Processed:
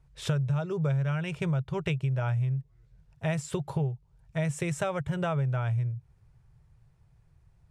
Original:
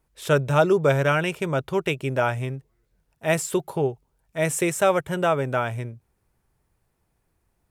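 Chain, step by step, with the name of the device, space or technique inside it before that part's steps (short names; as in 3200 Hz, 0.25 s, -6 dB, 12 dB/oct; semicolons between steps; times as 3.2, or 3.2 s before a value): jukebox (LPF 6900 Hz 12 dB/oct; resonant low shelf 180 Hz +9.5 dB, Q 3; compressor 6:1, threshold -27 dBFS, peak gain reduction 18.5 dB)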